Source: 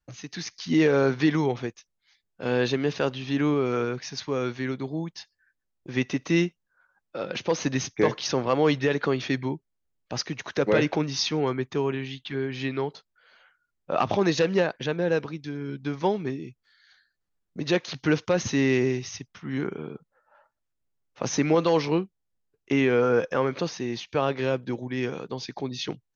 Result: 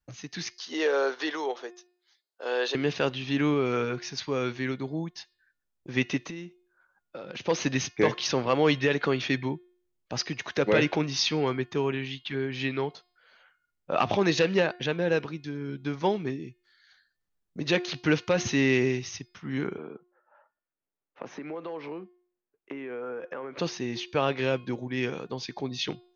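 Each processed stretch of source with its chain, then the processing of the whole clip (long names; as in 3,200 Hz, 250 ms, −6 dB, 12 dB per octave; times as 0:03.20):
0:00.56–0:02.75: high-pass filter 420 Hz 24 dB per octave + parametric band 2,300 Hz −9.5 dB 0.43 octaves
0:06.25–0:07.40: notch filter 5,400 Hz, Q 28 + downward compressor 16 to 1, threshold −33 dBFS
0:19.78–0:23.58: downward compressor 16 to 1, threshold −29 dBFS + three-way crossover with the lows and the highs turned down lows −16 dB, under 220 Hz, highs −23 dB, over 2,800 Hz
whole clip: hum removal 357.6 Hz, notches 14; dynamic equaliser 2,700 Hz, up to +5 dB, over −42 dBFS, Q 1.1; level −1.5 dB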